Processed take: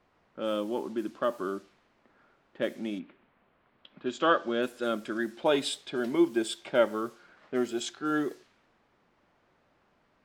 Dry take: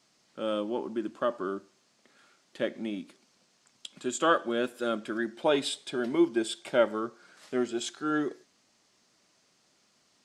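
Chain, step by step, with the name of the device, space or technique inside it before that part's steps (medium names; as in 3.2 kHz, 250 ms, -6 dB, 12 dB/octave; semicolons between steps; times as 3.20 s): cassette deck with a dynamic noise filter (white noise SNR 27 dB; level-controlled noise filter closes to 1.3 kHz, open at -27 dBFS); 2.98–4.61 s: low-pass 2.7 kHz -> 6.4 kHz 24 dB/octave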